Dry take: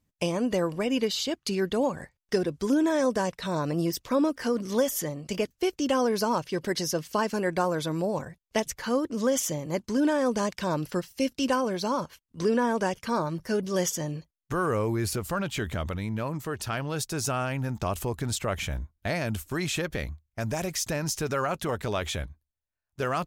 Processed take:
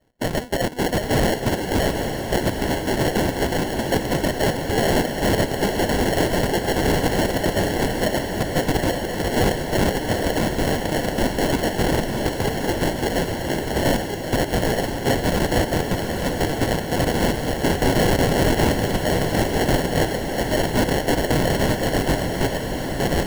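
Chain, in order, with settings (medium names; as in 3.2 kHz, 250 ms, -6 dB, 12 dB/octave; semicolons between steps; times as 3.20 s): chunks repeated in reverse 301 ms, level -5 dB; RIAA curve recording; harmonic-percussive split harmonic -16 dB; bass shelf 280 Hz -7.5 dB; in parallel at +1.5 dB: level held to a coarse grid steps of 12 dB; on the sum: saturation -9.5 dBFS, distortion -17 dB; 17.70–18.72 s: overdrive pedal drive 20 dB, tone 5.7 kHz, clips at -9.5 dBFS; sample-and-hold 36×; integer overflow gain 20.5 dB; on a send: echo that smears into a reverb 840 ms, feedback 58%, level -6 dB; on the sum: trim +7.5 dB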